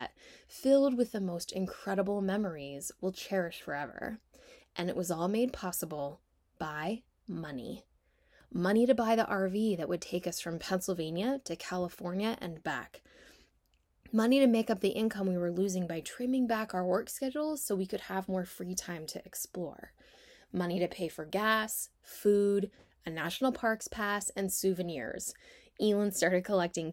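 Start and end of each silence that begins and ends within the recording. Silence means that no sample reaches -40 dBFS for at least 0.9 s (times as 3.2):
12.96–14.06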